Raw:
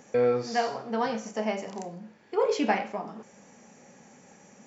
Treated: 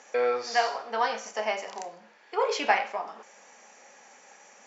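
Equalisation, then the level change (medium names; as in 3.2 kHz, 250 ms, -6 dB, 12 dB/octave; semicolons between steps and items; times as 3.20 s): band-pass 740–6600 Hz; +5.5 dB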